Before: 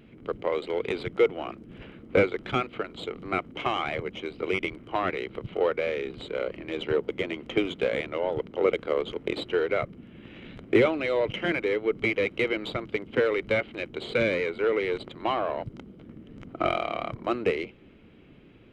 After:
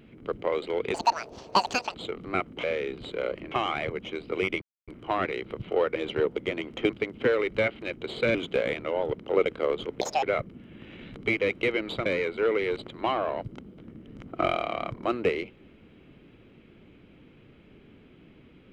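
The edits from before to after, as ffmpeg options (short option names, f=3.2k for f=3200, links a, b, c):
-filter_complex "[0:a]asplit=13[a][b][c][d][e][f][g][h][i][j][k][l][m];[a]atrim=end=0.944[n];[b]atrim=start=0.94:end=2.93,asetpts=PTS-STARTPTS,asetrate=87318,aresample=44100[o];[c]atrim=start=2.926:end=3.622[p];[d]atrim=start=5.798:end=6.682[q];[e]atrim=start=3.618:end=4.72,asetpts=PTS-STARTPTS,afade=t=out:st=1.098:d=0.004:c=hsin,apad=pad_dur=0.26[r];[f]atrim=start=4.72:end=5.802,asetpts=PTS-STARTPTS,afade=t=in:d=0.004:c=hsin[s];[g]atrim=start=6.678:end=7.622[t];[h]atrim=start=12.818:end=14.272[u];[i]atrim=start=7.618:end=9.284[v];[j]atrim=start=9.28:end=9.66,asetpts=PTS-STARTPTS,asetrate=75411,aresample=44100[w];[k]atrim=start=9.656:end=10.602[x];[l]atrim=start=11.928:end=12.822[y];[m]atrim=start=14.268[z];[n][o]acrossfade=d=0.004:c1=hsin:c2=hsin[aa];[aa][p]acrossfade=d=0.004:c1=hsin:c2=hsin[ab];[ab][q]acrossfade=d=0.004:c1=hsin:c2=hsin[ac];[r][s]concat=n=2:v=0:a=1[ad];[ac][ad]acrossfade=d=0.004:c1=hsin:c2=hsin[ae];[ae][t]acrossfade=d=0.004:c1=hsin:c2=hsin[af];[af][u]acrossfade=d=0.004:c1=hsin:c2=hsin[ag];[ag][v]acrossfade=d=0.004:c1=hsin:c2=hsin[ah];[ah][w]acrossfade=d=0.004:c1=hsin:c2=hsin[ai];[ai][x]acrossfade=d=0.004:c1=hsin:c2=hsin[aj];[aj][y]acrossfade=d=0.004:c1=hsin:c2=hsin[ak];[ak][z]acrossfade=d=0.004:c1=hsin:c2=hsin"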